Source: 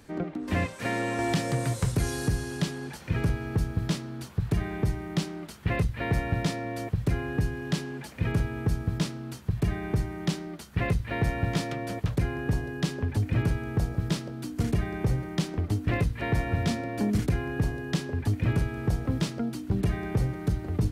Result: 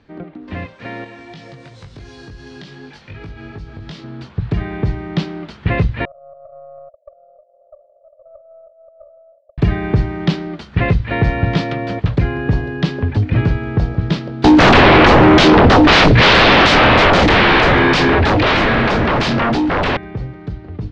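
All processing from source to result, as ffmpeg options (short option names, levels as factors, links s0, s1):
-filter_complex "[0:a]asettb=1/sr,asplit=3[s0][s1][s2];[s0]atrim=end=1.044[s3];[s1]atrim=start=1.04:end=4.04,asetpts=PTS-STARTPTS,afade=t=in:d=0.004:c=qsin,afade=t=out:st=2.996:d=0.004:c=qsin,highshelf=f=3400:g=10.5,acompressor=threshold=0.0355:ratio=12:attack=3.2:release=140:knee=1:detection=peak,flanger=delay=19:depth=2.1:speed=2.7[s4];[s2]atrim=start=4.036[s5];[s3][s4]acrossfade=d=0.004:c1=hsin:c2=qsin[s6];[s6][s5]acrossfade=d=0.004:c1=qsin:c2=hsin,asettb=1/sr,asplit=3[s7][s8][s9];[s7]atrim=end=6.054[s10];[s8]atrim=start=6.05:end=9.58,asetpts=PTS-STARTPTS,afade=t=in:d=0.004:c=qsin,afade=t=out:st=3.526:d=0.004:c=qsin,acompressor=threshold=0.0316:ratio=2.5:attack=3.2:release=140:knee=1:detection=peak,asuperpass=centerf=600:order=8:qfactor=4.7,aeval=exprs='(tanh(50.1*val(0)+0.55)-tanh(0.55))/50.1':c=same[s11];[s9]atrim=start=9.576[s12];[s10][s11]acrossfade=d=0.004:c1=hsin:c2=qsin[s13];[s13][s12]acrossfade=d=0.004:c1=qsin:c2=hsin,asettb=1/sr,asplit=3[s14][s15][s16];[s14]atrim=end=14.444[s17];[s15]atrim=start=14.44:end=19.97,asetpts=PTS-STARTPTS,afade=t=in:d=0.004:c=qsin,afade=t=out:st=5.526:d=0.004:c=qsin,asplit=2[s18][s19];[s19]adelay=26,volume=0.447[s20];[s18][s20]amix=inputs=2:normalize=0,atrim=end_sample=243873,aeval=exprs='0.188*sin(PI/2*8.91*val(0)/0.188)':c=same[s21];[s16]atrim=start=19.966[s22];[s17][s21]acrossfade=d=0.004:c1=hsin:c2=qsin[s23];[s23][s22]acrossfade=d=0.004:c1=qsin:c2=hsin,lowpass=f=4300:w=0.5412,lowpass=f=4300:w=1.3066,dynaudnorm=f=900:g=11:m=4.73"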